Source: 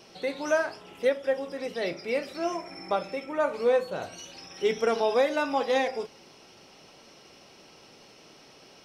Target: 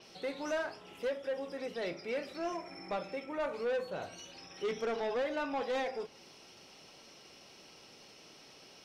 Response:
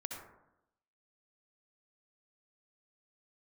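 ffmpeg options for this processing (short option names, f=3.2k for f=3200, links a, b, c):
-filter_complex "[0:a]asettb=1/sr,asplit=3[a][b][c];[a]atrim=end=4.854[d];[b]atrim=start=4.85:end=5.6,asetpts=PTS-STARTPTS,afade=t=in:d=0.004:c=qsin,afade=t=out:st=0.746:d=0.004:c=qsin,bass=f=250:g=-1,treble=f=4k:g=-5[e];[c]atrim=start=5.596[f];[d][e]acrossfade=d=0.004:c1=hsin:c2=qsin[g];[g][f]acrossfade=d=0.004:c1=qsin:c2=hsin,acrossover=split=2100[h][i];[i]acompressor=mode=upward:threshold=-47dB:ratio=2.5[j];[h][j]amix=inputs=2:normalize=0,asoftclip=type=tanh:threshold=-24.5dB,adynamicequalizer=threshold=0.00282:dfrequency=5600:dqfactor=0.7:tfrequency=5600:tqfactor=0.7:attack=5:release=100:ratio=0.375:range=2.5:mode=cutabove:tftype=highshelf,volume=-5dB"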